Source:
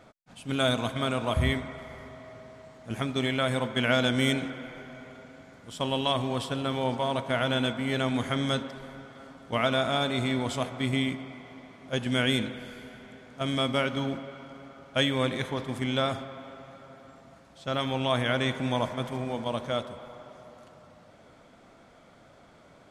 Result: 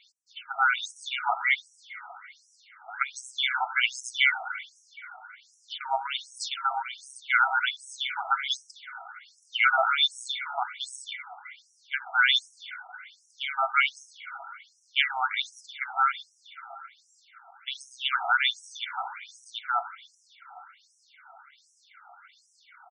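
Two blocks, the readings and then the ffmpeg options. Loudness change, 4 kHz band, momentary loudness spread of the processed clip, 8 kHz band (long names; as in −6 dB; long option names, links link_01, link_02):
+1.5 dB, +2.0 dB, 21 LU, +2.5 dB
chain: -af "aecho=1:1:1.4:0.79,afftfilt=real='re*between(b*sr/1024,960*pow(7500/960,0.5+0.5*sin(2*PI*1.3*pts/sr))/1.41,960*pow(7500/960,0.5+0.5*sin(2*PI*1.3*pts/sr))*1.41)':imag='im*between(b*sr/1024,960*pow(7500/960,0.5+0.5*sin(2*PI*1.3*pts/sr))/1.41,960*pow(7500/960,0.5+0.5*sin(2*PI*1.3*pts/sr))*1.41)':win_size=1024:overlap=0.75,volume=8dB"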